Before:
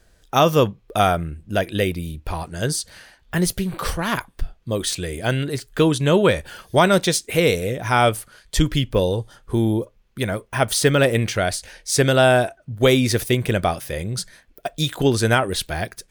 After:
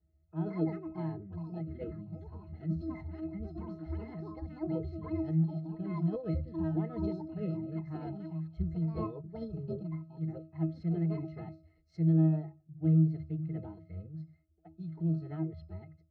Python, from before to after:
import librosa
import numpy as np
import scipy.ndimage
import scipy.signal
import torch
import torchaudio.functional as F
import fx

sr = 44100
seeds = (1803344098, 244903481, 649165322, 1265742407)

p1 = fx.echo_pitch(x, sr, ms=273, semitones=6, count=2, db_per_echo=-3.0)
p2 = scipy.signal.sosfilt(scipy.signal.butter(2, 43.0, 'highpass', fs=sr, output='sos'), p1)
p3 = fx.low_shelf(p2, sr, hz=300.0, db=7.0)
p4 = 10.0 ** (-12.0 / 20.0) * np.tanh(p3 / 10.0 ** (-12.0 / 20.0))
p5 = p3 + (p4 * 10.0 ** (-8.0 / 20.0))
p6 = scipy.signal.sosfilt(scipy.signal.cheby1(2, 1.0, 4400.0, 'lowpass', fs=sr, output='sos'), p5)
p7 = fx.octave_resonator(p6, sr, note='C', decay_s=0.36)
p8 = fx.pitch_keep_formants(p7, sr, semitones=3.5)
p9 = fx.high_shelf(p8, sr, hz=3000.0, db=-10.0)
p10 = fx.hum_notches(p9, sr, base_hz=50, count=3)
y = p10 * 10.0 ** (-7.5 / 20.0)